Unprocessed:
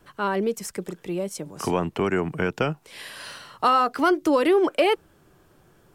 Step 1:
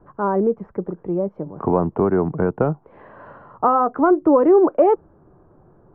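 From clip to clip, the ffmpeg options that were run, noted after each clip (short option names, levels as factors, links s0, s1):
-af "lowpass=f=1100:w=0.5412,lowpass=f=1100:w=1.3066,volume=2"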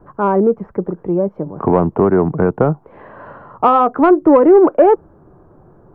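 -af "acontrast=23,volume=1.12"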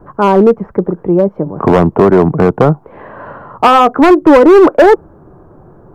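-af "asoftclip=type=hard:threshold=0.398,volume=2.11"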